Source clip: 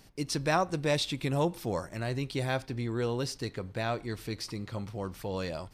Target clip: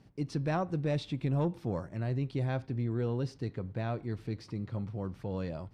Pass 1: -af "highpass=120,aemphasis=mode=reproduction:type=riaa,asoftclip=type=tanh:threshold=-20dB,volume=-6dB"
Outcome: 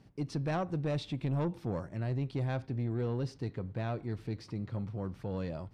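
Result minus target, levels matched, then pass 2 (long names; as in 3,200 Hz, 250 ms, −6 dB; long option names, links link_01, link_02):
soft clipping: distortion +8 dB
-af "highpass=120,aemphasis=mode=reproduction:type=riaa,asoftclip=type=tanh:threshold=-14dB,volume=-6dB"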